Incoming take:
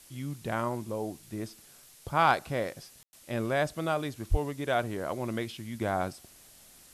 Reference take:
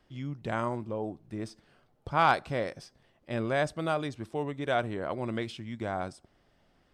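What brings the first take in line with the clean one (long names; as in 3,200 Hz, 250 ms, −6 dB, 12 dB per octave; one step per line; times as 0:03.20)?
0:04.30–0:04.42: high-pass filter 140 Hz 24 dB per octave
ambience match 0:03.03–0:03.13
noise reduction from a noise print 12 dB
level 0 dB, from 0:05.75 −3.5 dB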